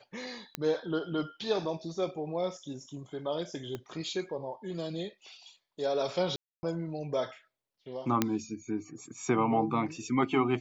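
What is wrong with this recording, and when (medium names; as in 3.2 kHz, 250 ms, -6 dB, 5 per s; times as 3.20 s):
0.55 s: pop -15 dBFS
3.75 s: pop -24 dBFS
6.36–6.63 s: dropout 270 ms
8.22 s: pop -10 dBFS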